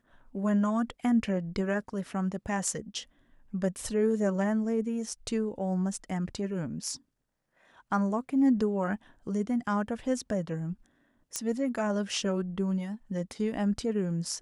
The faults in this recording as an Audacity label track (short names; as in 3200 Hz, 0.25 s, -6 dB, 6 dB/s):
11.360000	11.360000	pop -15 dBFS